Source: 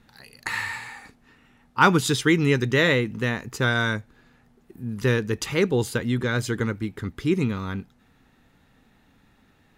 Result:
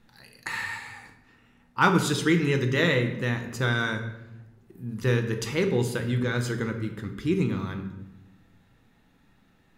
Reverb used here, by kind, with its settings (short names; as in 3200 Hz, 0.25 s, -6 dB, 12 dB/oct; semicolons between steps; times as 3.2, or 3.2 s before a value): shoebox room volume 400 m³, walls mixed, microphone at 0.72 m; gain -4.5 dB